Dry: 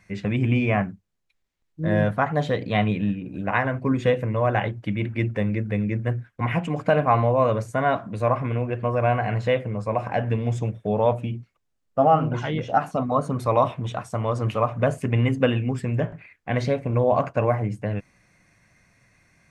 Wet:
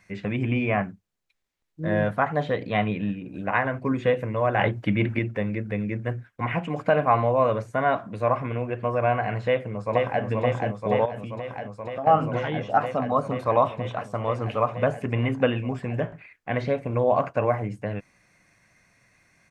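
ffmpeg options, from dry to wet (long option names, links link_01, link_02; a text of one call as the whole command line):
ffmpeg -i in.wav -filter_complex "[0:a]asettb=1/sr,asplit=3[link_01][link_02][link_03];[link_01]atrim=end=4.594[link_04];[link_02]atrim=start=4.59:end=5.19,asetpts=PTS-STARTPTS,afade=type=in:duration=0.004:curve=qsin,afade=type=out:start_time=0.596:duration=0.004:curve=qsin,acontrast=76[link_05];[link_03]atrim=start=5.186[link_06];[link_04][link_05]acrossfade=duration=0.004:curve1=hsin:curve2=qsin[link_07];[link_07][link_06]acrossfade=duration=0.004:curve1=qsin:curve2=hsin,asplit=2[link_08][link_09];[link_09]afade=type=in:start_time=9.45:duration=0.01,afade=type=out:start_time=10.23:duration=0.01,aecho=0:1:480|960|1440|1920|2400|2880|3360|3840|4320|4800|5280|5760:0.707946|0.601754|0.511491|0.434767|0.369552|0.314119|0.267001|0.226951|0.192909|0.163972|0.139376|0.11847[link_10];[link_08][link_10]amix=inputs=2:normalize=0,asettb=1/sr,asplit=3[link_11][link_12][link_13];[link_11]atrim=end=11.054[link_14];[link_12]atrim=start=11.05:end=12.07,asetpts=PTS-STARTPTS,afade=type=in:duration=0.004:curve=qsin,afade=type=out:start_time=1.016:duration=0.004:curve=qsin,acompressor=threshold=-27dB:ratio=5:attack=3.2:release=140:knee=1:detection=peak[link_15];[link_13]atrim=start=12.066[link_16];[link_14][link_15]acrossfade=duration=0.004:curve1=hsin:curve2=qsin[link_17];[link_17][link_16]acrossfade=duration=0.004:curve1=qsin:curve2=hsin,acrossover=split=3500[link_18][link_19];[link_19]acompressor=threshold=-57dB:ratio=4:attack=1:release=60[link_20];[link_18][link_20]amix=inputs=2:normalize=0,lowshelf=frequency=220:gain=-6.5" out.wav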